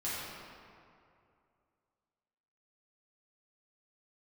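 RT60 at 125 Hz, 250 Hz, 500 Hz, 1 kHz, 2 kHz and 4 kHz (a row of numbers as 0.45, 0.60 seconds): 2.6, 2.4, 2.5, 2.4, 2.0, 1.4 seconds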